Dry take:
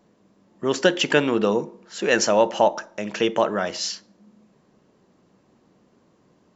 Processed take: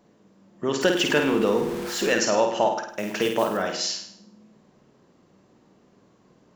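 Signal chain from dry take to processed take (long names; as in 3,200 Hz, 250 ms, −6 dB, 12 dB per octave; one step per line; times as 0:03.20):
0:00.81–0:02.14: converter with a step at zero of −30 dBFS
in parallel at +1.5 dB: downward compressor, threshold −26 dBFS, peak gain reduction 14 dB
0:02.88–0:03.57: on the sum: noise that follows the level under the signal 21 dB
flutter between parallel walls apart 8.8 metres, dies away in 0.58 s
level −6.5 dB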